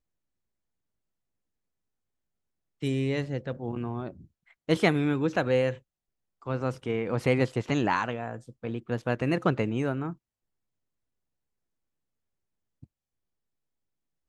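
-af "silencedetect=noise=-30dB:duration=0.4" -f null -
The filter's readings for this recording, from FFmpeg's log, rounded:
silence_start: 0.00
silence_end: 2.83 | silence_duration: 2.83
silence_start: 4.08
silence_end: 4.69 | silence_duration: 0.61
silence_start: 5.73
silence_end: 6.47 | silence_duration: 0.74
silence_start: 10.10
silence_end: 14.29 | silence_duration: 4.18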